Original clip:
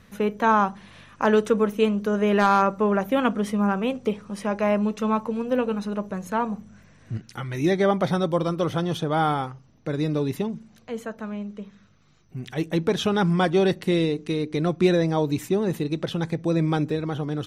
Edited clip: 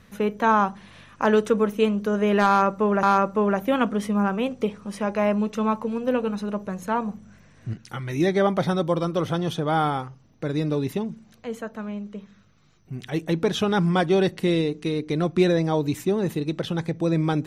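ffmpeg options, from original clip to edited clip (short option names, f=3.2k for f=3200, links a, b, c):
-filter_complex "[0:a]asplit=2[a][b];[a]atrim=end=3.032[c];[b]atrim=start=2.468[d];[c][d]acrossfade=d=0.004:c1=hsin:c2=hsin"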